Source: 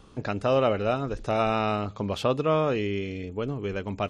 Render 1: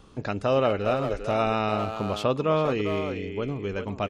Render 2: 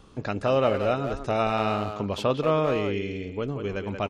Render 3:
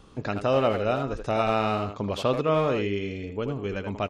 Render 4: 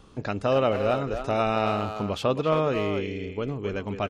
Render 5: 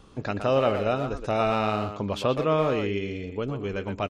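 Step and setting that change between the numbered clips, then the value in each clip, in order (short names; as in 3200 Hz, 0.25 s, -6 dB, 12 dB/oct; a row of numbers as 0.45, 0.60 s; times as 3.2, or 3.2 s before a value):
speakerphone echo, time: 400, 180, 80, 270, 120 ms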